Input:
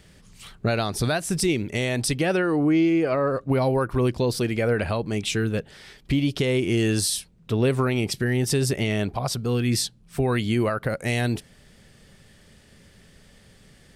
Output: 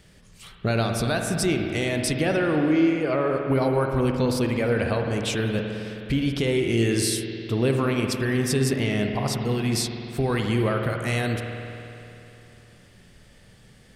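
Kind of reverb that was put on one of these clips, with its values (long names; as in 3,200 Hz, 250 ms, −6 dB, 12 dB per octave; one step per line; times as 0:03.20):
spring reverb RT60 3 s, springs 52 ms, chirp 70 ms, DRR 3 dB
level −1.5 dB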